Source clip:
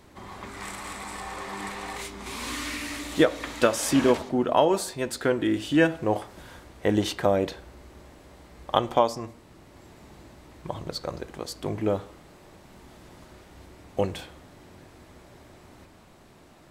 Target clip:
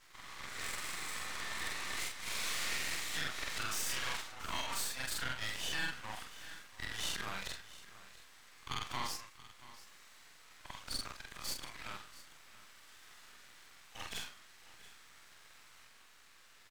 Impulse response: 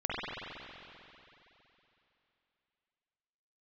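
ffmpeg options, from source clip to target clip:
-af "afftfilt=real='re':imag='-im':win_size=4096:overlap=0.75,highpass=frequency=1300:width=0.5412,highpass=frequency=1300:width=1.3066,equalizer=frequency=11000:width=4:gain=-8.5,alimiter=level_in=7.5dB:limit=-24dB:level=0:latency=1:release=90,volume=-7.5dB,aeval=exprs='max(val(0),0)':channel_layout=same,aecho=1:1:682:0.133,volume=8dB"

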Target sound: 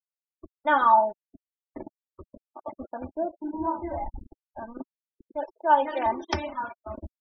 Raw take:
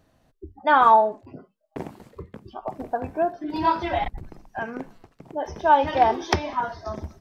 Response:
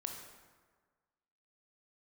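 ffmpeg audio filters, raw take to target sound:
-filter_complex "[0:a]asettb=1/sr,asplit=3[link_01][link_02][link_03];[link_01]atrim=end=5.344[link_04];[link_02]atrim=start=5.34:end=6.06,asetpts=PTS-STARTPTS,afade=type=in:duration=0.004:curve=qsin,afade=type=out:start_time=0.716:duration=0.004:curve=qsin,highpass=frequency=270:width=0.5412,highpass=frequency=270:width=1.3066[link_05];[link_03]atrim=start=6.056[link_06];[link_04][link_05]acrossfade=duration=0.004:curve1=hsin:curve2=qsin[link_07];[link_07][link_06]acrossfade=duration=0.004:curve1=qsin:curve2=hsin,flanger=delay=9.1:depth=5:regen=-76:speed=1.9:shape=triangular,acrusher=bits=5:mix=0:aa=0.5,asplit=3[link_08][link_09][link_10];[link_08]afade=type=out:start_time=3.04:duration=0.02[link_11];[link_09]lowpass=1200,afade=type=in:start_time=3.04:duration=0.02,afade=type=out:start_time=4.77:duration=0.02[link_12];[link_10]afade=type=in:start_time=4.77:duration=0.02[link_13];[link_11][link_12][link_13]amix=inputs=3:normalize=0,afftfilt=real='re*gte(hypot(re,im),0.0178)':imag='im*gte(hypot(re,im),0.0178)':win_size=1024:overlap=0.75,aecho=1:1:3.4:0.89,volume=-3.5dB"

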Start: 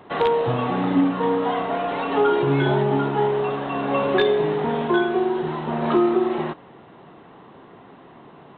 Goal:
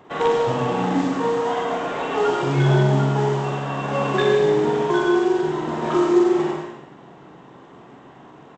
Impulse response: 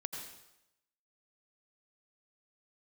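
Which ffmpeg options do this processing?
-filter_complex "[0:a]aresample=16000,acrusher=bits=6:mode=log:mix=0:aa=0.000001,aresample=44100,asplit=2[link_01][link_02];[link_02]adelay=45,volume=-5dB[link_03];[link_01][link_03]amix=inputs=2:normalize=0[link_04];[1:a]atrim=start_sample=2205[link_05];[link_04][link_05]afir=irnorm=-1:irlink=0"

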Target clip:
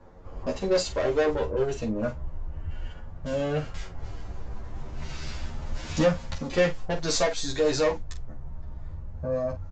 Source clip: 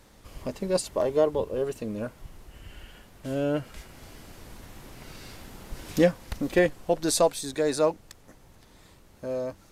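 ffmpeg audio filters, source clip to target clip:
ffmpeg -i in.wav -filter_complex "[0:a]asettb=1/sr,asplit=3[link_01][link_02][link_03];[link_01]atrim=end=6.344[link_04];[link_02]atrim=start=6.34:end=7.37,asetpts=PTS-STARTPTS,afade=type=in:duration=0.004:curve=qsin,afade=type=out:start_time=1.026:duration=0.004:curve=qsin,aeval=exprs='0.355*(cos(1*acos(clip(val(0)/0.355,-1,1)))-cos(1*PI/2))+0.0112*(cos(7*acos(clip(val(0)/0.355,-1,1)))-cos(7*PI/2))':channel_layout=same[link_05];[link_03]atrim=start=7.366[link_06];[link_04][link_05]acrossfade=duration=0.004:curve1=hsin:curve2=qsin[link_07];[link_07][link_06]acrossfade=duration=0.004:curve1=qsin:curve2=hsin,asubboost=boost=9.5:cutoff=96,acrossover=split=200|1400[link_08][link_09][link_10];[link_08]acompressor=threshold=-35dB:ratio=6[link_11];[link_10]agate=range=-21dB:threshold=-52dB:ratio=16:detection=peak[link_12];[link_11][link_09][link_12]amix=inputs=3:normalize=0,asoftclip=type=tanh:threshold=-25dB,asplit=2[link_13][link_14];[link_14]aecho=0:1:13|46:0.473|0.316[link_15];[link_13][link_15]amix=inputs=2:normalize=0,aresample=16000,aresample=44100,asplit=2[link_16][link_17];[link_17]adelay=9,afreqshift=0.31[link_18];[link_16][link_18]amix=inputs=2:normalize=1,volume=8dB" out.wav

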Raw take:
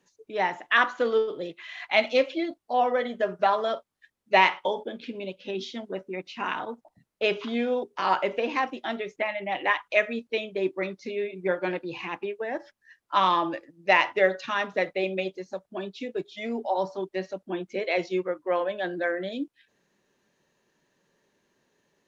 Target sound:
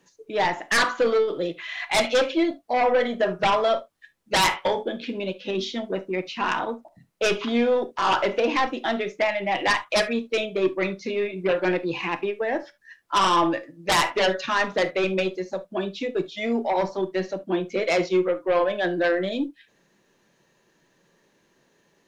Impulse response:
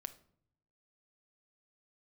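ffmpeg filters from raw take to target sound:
-filter_complex "[0:a]aeval=exprs='0.531*(cos(1*acos(clip(val(0)/0.531,-1,1)))-cos(1*PI/2))+0.00422*(cos(8*acos(clip(val(0)/0.531,-1,1)))-cos(8*PI/2))':channel_layout=same,aeval=exprs='0.531*sin(PI/2*4.47*val(0)/0.531)':channel_layout=same[link_01];[1:a]atrim=start_sample=2205,atrim=end_sample=3528[link_02];[link_01][link_02]afir=irnorm=-1:irlink=0,volume=-6.5dB"

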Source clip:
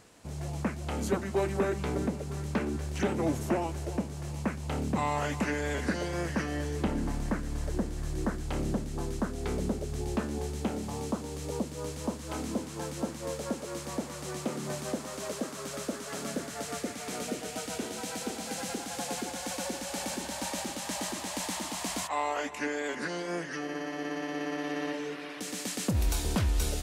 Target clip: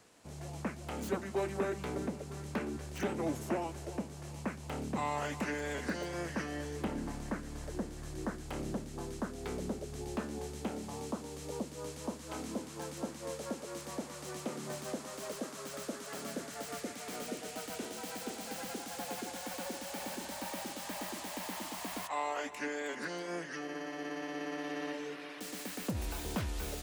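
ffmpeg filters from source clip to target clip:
ffmpeg -i in.wav -filter_complex "[0:a]lowshelf=frequency=120:gain=-8.5,acrossover=split=190|700|3100[link_01][link_02][link_03][link_04];[link_04]aeval=exprs='(mod(63.1*val(0)+1,2)-1)/63.1':channel_layout=same[link_05];[link_01][link_02][link_03][link_05]amix=inputs=4:normalize=0,volume=-4.5dB" out.wav

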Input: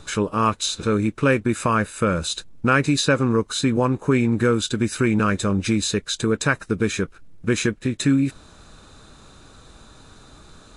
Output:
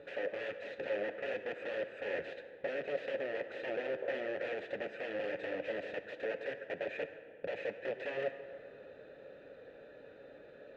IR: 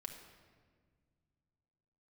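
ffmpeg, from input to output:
-filter_complex "[0:a]acompressor=threshold=-31dB:ratio=2.5,aeval=exprs='(mod(26.6*val(0)+1,2)-1)/26.6':channel_layout=same,asplit=3[link_01][link_02][link_03];[link_01]bandpass=frequency=530:width_type=q:width=8,volume=0dB[link_04];[link_02]bandpass=frequency=1840:width_type=q:width=8,volume=-6dB[link_05];[link_03]bandpass=frequency=2480:width_type=q:width=8,volume=-9dB[link_06];[link_04][link_05][link_06]amix=inputs=3:normalize=0,adynamicsmooth=sensitivity=1.5:basefreq=1900,asplit=2[link_07][link_08];[1:a]atrim=start_sample=2205,asetrate=29547,aresample=44100,lowshelf=frequency=260:gain=-7.5[link_09];[link_08][link_09]afir=irnorm=-1:irlink=0,volume=4dB[link_10];[link_07][link_10]amix=inputs=2:normalize=0,volume=5dB"

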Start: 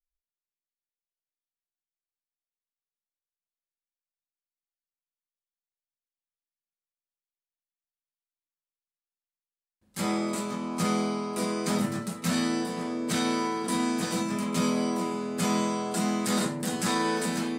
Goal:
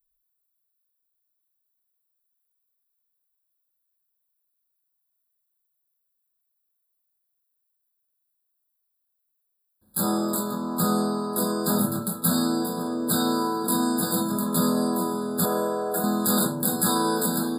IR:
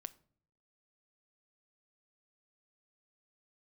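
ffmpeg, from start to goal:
-filter_complex "[0:a]asettb=1/sr,asplit=3[link_01][link_02][link_03];[link_01]atrim=end=15.454[link_04];[link_02]atrim=start=15.45:end=16.04,asetpts=PTS-STARTPTS,afade=type=in:duration=0.004:curve=qsin,afade=type=out:start_time=0.586:duration=0.004:curve=qsin,equalizer=frequency=125:width_type=o:width=1:gain=-7,equalizer=frequency=250:width_type=o:width=1:gain=-10,equalizer=frequency=500:width_type=o:width=1:gain=9,equalizer=frequency=1000:width_type=o:width=1:gain=-5,equalizer=frequency=2000:width_type=o:width=1:gain=6,equalizer=frequency=4000:width_type=o:width=1:gain=-9,equalizer=frequency=8000:width_type=o:width=1:gain=-6[link_05];[link_03]atrim=start=16.036[link_06];[link_04][link_05]acrossfade=duration=0.004:curve1=hsin:curve2=qsin[link_07];[link_07][link_06]acrossfade=duration=0.004:curve1=qsin:curve2=hsin,aexciter=amount=10.6:drive=3.1:freq=9700,afftfilt=real='re*eq(mod(floor(b*sr/1024/1700),2),0)':imag='im*eq(mod(floor(b*sr/1024/1700),2),0)':win_size=1024:overlap=0.75,volume=3.5dB"

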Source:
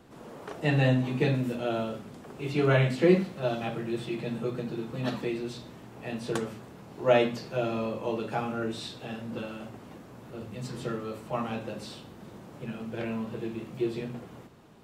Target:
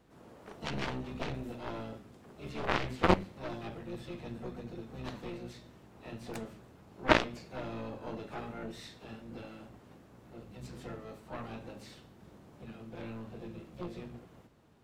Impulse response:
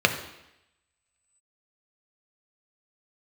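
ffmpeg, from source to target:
-filter_complex "[0:a]asplit=3[link_01][link_02][link_03];[link_02]asetrate=22050,aresample=44100,atempo=2,volume=-5dB[link_04];[link_03]asetrate=66075,aresample=44100,atempo=0.66742,volume=-9dB[link_05];[link_01][link_04][link_05]amix=inputs=3:normalize=0,aeval=exprs='0.447*(cos(1*acos(clip(val(0)/0.447,-1,1)))-cos(1*PI/2))+0.178*(cos(3*acos(clip(val(0)/0.447,-1,1)))-cos(3*PI/2))+0.00631*(cos(8*acos(clip(val(0)/0.447,-1,1)))-cos(8*PI/2))':channel_layout=same,volume=3.5dB"

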